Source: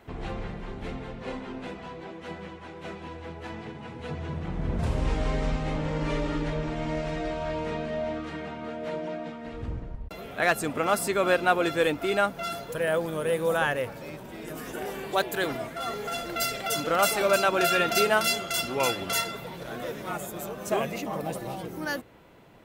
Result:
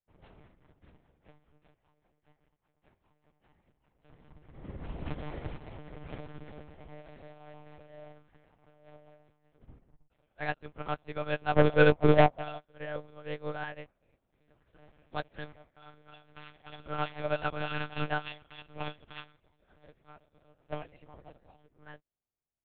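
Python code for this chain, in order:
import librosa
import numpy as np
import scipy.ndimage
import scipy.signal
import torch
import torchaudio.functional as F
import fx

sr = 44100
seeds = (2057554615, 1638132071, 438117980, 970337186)

y = fx.spec_box(x, sr, start_s=11.56, length_s=1.03, low_hz=330.0, high_hz=1100.0, gain_db=12)
y = 10.0 ** (-16.0 / 20.0) * np.tanh(y / 10.0 ** (-16.0 / 20.0))
y = fx.lpc_monotone(y, sr, seeds[0], pitch_hz=150.0, order=8)
y = fx.upward_expand(y, sr, threshold_db=-48.0, expansion=2.5)
y = y * librosa.db_to_amplitude(1.5)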